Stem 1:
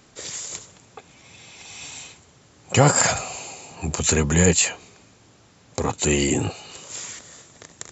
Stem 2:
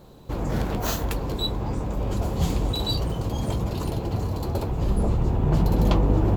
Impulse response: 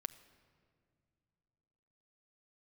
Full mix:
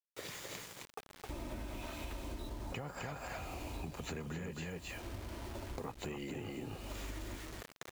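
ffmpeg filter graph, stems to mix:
-filter_complex "[0:a]equalizer=frequency=70:width=3:gain=-7,alimiter=limit=-10.5dB:level=0:latency=1:release=269,volume=-5.5dB,asplit=3[link_01][link_02][link_03];[link_02]volume=-3.5dB[link_04];[1:a]aecho=1:1:3.2:0.86,bandreject=frequency=47.07:width_type=h:width=4,bandreject=frequency=94.14:width_type=h:width=4,bandreject=frequency=141.21:width_type=h:width=4,bandreject=frequency=188.28:width_type=h:width=4,bandreject=frequency=235.35:width_type=h:width=4,bandreject=frequency=282.42:width_type=h:width=4,bandreject=frequency=329.49:width_type=h:width=4,bandreject=frequency=376.56:width_type=h:width=4,bandreject=frequency=423.63:width_type=h:width=4,adelay=1000,volume=-11.5dB,afade=type=out:start_time=5.16:duration=0.3:silence=0.446684,asplit=2[link_05][link_06];[link_06]volume=-13dB[link_07];[link_03]apad=whole_len=325021[link_08];[link_05][link_08]sidechaincompress=threshold=-45dB:ratio=3:attack=34:release=619[link_09];[link_04][link_07]amix=inputs=2:normalize=0,aecho=0:1:263:1[link_10];[link_01][link_09][link_10]amix=inputs=3:normalize=0,lowpass=2900,acrusher=bits=7:mix=0:aa=0.000001,acompressor=threshold=-39dB:ratio=12"

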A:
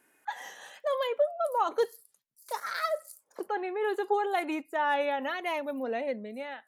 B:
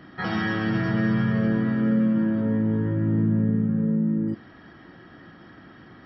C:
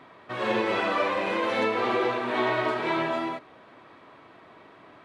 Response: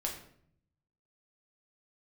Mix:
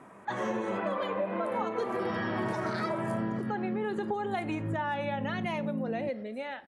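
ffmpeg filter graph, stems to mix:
-filter_complex "[0:a]lowpass=frequency=9300:width=0.5412,lowpass=frequency=9300:width=1.3066,volume=-0.5dB,asplit=3[link_01][link_02][link_03];[link_02]volume=-12dB[link_04];[1:a]agate=range=-14dB:threshold=-41dB:ratio=16:detection=peak,adelay=1750,volume=-3dB[link_05];[2:a]lowpass=1500,equalizer=frequency=200:width=6.9:gain=12,volume=-0.5dB[link_06];[link_03]apad=whole_len=344296[link_07];[link_05][link_07]sidechaincompress=threshold=-36dB:ratio=8:attack=16:release=322[link_08];[3:a]atrim=start_sample=2205[link_09];[link_04][link_09]afir=irnorm=-1:irlink=0[link_10];[link_01][link_08][link_06][link_10]amix=inputs=4:normalize=0,acompressor=threshold=-29dB:ratio=5"

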